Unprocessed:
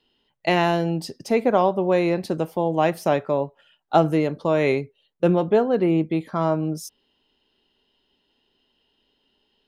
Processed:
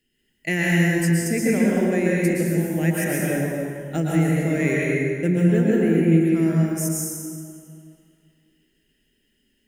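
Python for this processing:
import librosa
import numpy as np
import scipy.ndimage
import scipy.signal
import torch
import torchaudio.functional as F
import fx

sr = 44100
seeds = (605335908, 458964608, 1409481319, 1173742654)

y = fx.curve_eq(x, sr, hz=(210.0, 370.0, 1100.0, 1800.0, 4000.0, 7200.0), db=(0, -5, -25, 4, -15, 11))
y = fx.rev_plate(y, sr, seeds[0], rt60_s=2.3, hf_ratio=0.65, predelay_ms=105, drr_db=-5.0)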